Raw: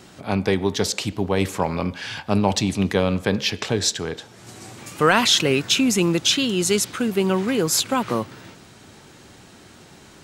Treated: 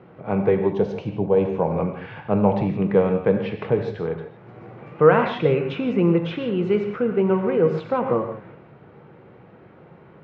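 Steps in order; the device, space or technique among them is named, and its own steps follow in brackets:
0:00.68–0:01.77: thirty-one-band graphic EQ 1,250 Hz −10 dB, 2,000 Hz −10 dB, 6,300 Hz +11 dB
bass cabinet (loudspeaker in its box 64–2,000 Hz, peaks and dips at 92 Hz −6 dB, 150 Hz +8 dB, 270 Hz −4 dB, 480 Hz +9 dB, 1,700 Hz −6 dB)
reverb whose tail is shaped and stops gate 190 ms flat, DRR 5 dB
level −2 dB

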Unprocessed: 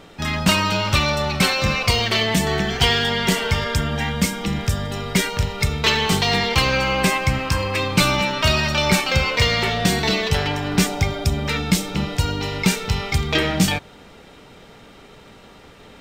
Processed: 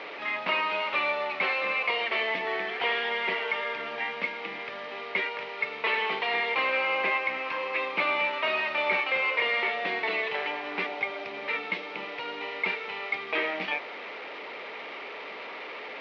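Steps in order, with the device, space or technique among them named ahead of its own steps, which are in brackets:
digital answering machine (band-pass filter 300–3,000 Hz; linear delta modulator 32 kbit/s, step −27 dBFS; loudspeaker in its box 460–3,400 Hz, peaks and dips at 760 Hz −3 dB, 1,500 Hz −6 dB, 2,200 Hz +6 dB, 3,300 Hz −3 dB)
level −4.5 dB

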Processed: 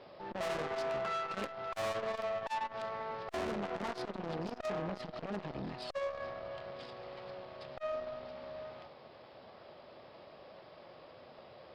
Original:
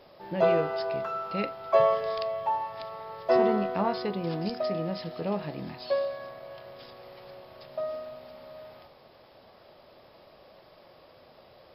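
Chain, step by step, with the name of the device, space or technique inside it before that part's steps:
valve radio (band-pass filter 83–4,100 Hz; tube saturation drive 36 dB, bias 0.65; saturating transformer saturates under 390 Hz)
level +4 dB

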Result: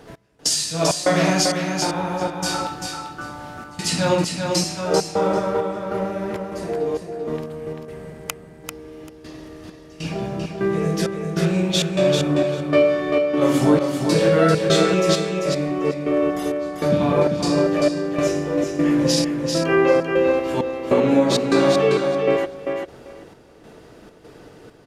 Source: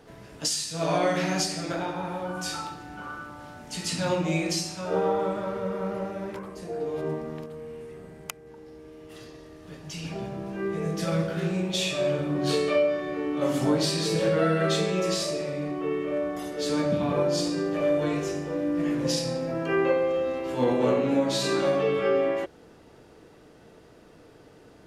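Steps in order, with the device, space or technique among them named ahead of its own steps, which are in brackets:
trance gate with a delay (gate pattern "x..xxx.xx" 99 BPM −24 dB; repeating echo 392 ms, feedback 15%, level −5 dB)
level +7.5 dB

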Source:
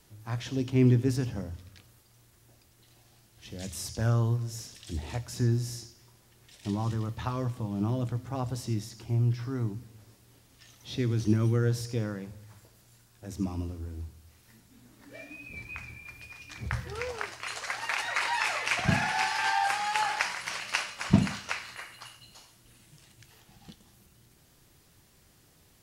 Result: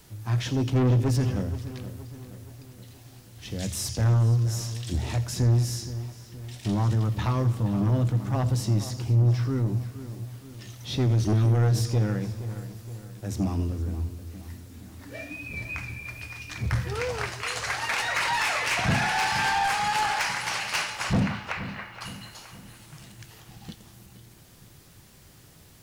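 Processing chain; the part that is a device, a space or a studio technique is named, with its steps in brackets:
0:21.20–0:22.01: high-frequency loss of the air 380 metres
open-reel tape (soft clipping −28 dBFS, distortion −7 dB; parametric band 120 Hz +4 dB 1.06 octaves; white noise bed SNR 40 dB)
feedback echo with a low-pass in the loop 471 ms, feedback 52%, low-pass 4,100 Hz, level −13 dB
level +7 dB

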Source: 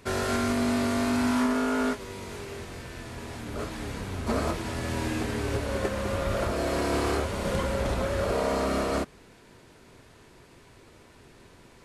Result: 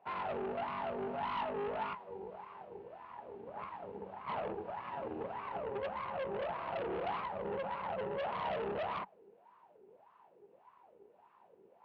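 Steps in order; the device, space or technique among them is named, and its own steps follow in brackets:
wah-wah guitar rig (LFO wah 1.7 Hz 400–1,100 Hz, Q 9.3; tube saturation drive 43 dB, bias 0.75; loudspeaker in its box 77–3,900 Hz, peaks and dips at 190 Hz +10 dB, 270 Hz −4 dB, 840 Hz +6 dB, 2,800 Hz +6 dB)
level +7.5 dB

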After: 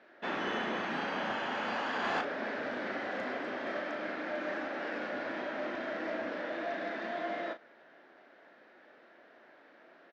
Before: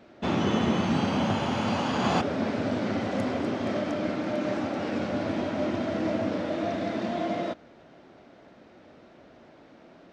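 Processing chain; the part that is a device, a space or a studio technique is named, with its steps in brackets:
intercom (band-pass filter 390–4,300 Hz; parametric band 1,700 Hz +10.5 dB 0.5 octaves; soft clipping −18.5 dBFS, distortion −24 dB; double-tracking delay 36 ms −9 dB)
level −6 dB

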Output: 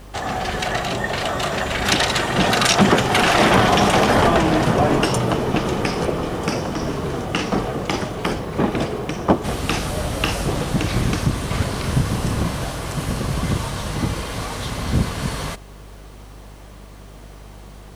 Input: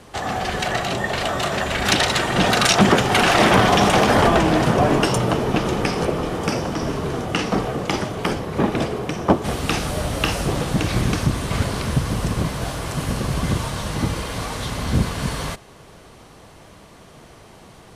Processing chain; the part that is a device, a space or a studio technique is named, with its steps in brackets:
0:11.81–0:12.65: double-tracking delay 30 ms −4.5 dB
video cassette with head-switching buzz (hum with harmonics 50 Hz, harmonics 36, −41 dBFS −8 dB per octave; white noise bed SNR 39 dB)

